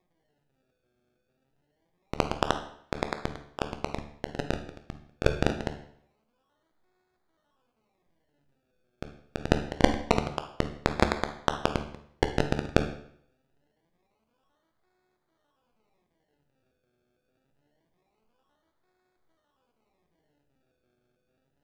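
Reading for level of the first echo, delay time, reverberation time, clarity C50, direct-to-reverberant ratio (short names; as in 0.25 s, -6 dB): none, none, 0.65 s, 9.5 dB, 6.5 dB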